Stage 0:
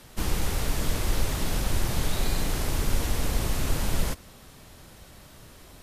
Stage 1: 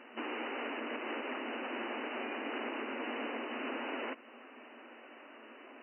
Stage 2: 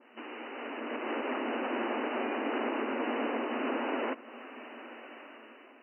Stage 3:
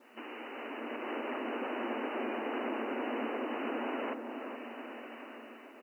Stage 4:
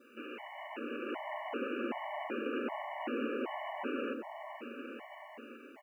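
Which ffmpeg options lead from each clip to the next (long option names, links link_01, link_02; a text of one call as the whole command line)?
ffmpeg -i in.wav -af "aemphasis=mode=production:type=50fm,afftfilt=real='re*between(b*sr/4096,220,3000)':imag='im*between(b*sr/4096,220,3000)':win_size=4096:overlap=0.75,alimiter=level_in=6.5dB:limit=-24dB:level=0:latency=1:release=294,volume=-6.5dB,volume=1dB" out.wav
ffmpeg -i in.wav -af "dynaudnorm=framelen=260:gausssize=7:maxgain=12dB,adynamicequalizer=threshold=0.00708:dfrequency=1600:dqfactor=0.7:tfrequency=1600:tqfactor=0.7:attack=5:release=100:ratio=0.375:range=3.5:mode=cutabove:tftype=highshelf,volume=-4.5dB" out.wav
ffmpeg -i in.wav -filter_complex "[0:a]asplit=2[link_01][link_02];[link_02]acompressor=threshold=-41dB:ratio=16,volume=-1dB[link_03];[link_01][link_03]amix=inputs=2:normalize=0,acrusher=bits=10:mix=0:aa=0.000001,asplit=2[link_04][link_05];[link_05]adelay=427,lowpass=frequency=1000:poles=1,volume=-5dB,asplit=2[link_06][link_07];[link_07]adelay=427,lowpass=frequency=1000:poles=1,volume=0.53,asplit=2[link_08][link_09];[link_09]adelay=427,lowpass=frequency=1000:poles=1,volume=0.53,asplit=2[link_10][link_11];[link_11]adelay=427,lowpass=frequency=1000:poles=1,volume=0.53,asplit=2[link_12][link_13];[link_13]adelay=427,lowpass=frequency=1000:poles=1,volume=0.53,asplit=2[link_14][link_15];[link_15]adelay=427,lowpass=frequency=1000:poles=1,volume=0.53,asplit=2[link_16][link_17];[link_17]adelay=427,lowpass=frequency=1000:poles=1,volume=0.53[link_18];[link_04][link_06][link_08][link_10][link_12][link_14][link_16][link_18]amix=inputs=8:normalize=0,volume=-6dB" out.wav
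ffmpeg -i in.wav -af "afftfilt=real='re*gt(sin(2*PI*1.3*pts/sr)*(1-2*mod(floor(b*sr/1024/580),2)),0)':imag='im*gt(sin(2*PI*1.3*pts/sr)*(1-2*mod(floor(b*sr/1024/580),2)),0)':win_size=1024:overlap=0.75,volume=1.5dB" out.wav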